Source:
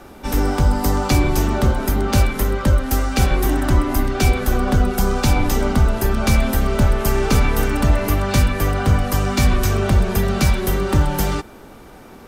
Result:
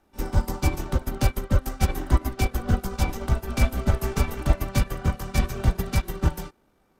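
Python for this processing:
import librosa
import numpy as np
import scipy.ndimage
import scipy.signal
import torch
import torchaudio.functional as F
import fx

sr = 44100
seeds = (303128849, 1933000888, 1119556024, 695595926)

y = fx.stretch_grains(x, sr, factor=0.57, grain_ms=40.0)
y = fx.upward_expand(y, sr, threshold_db=-26.0, expansion=2.5)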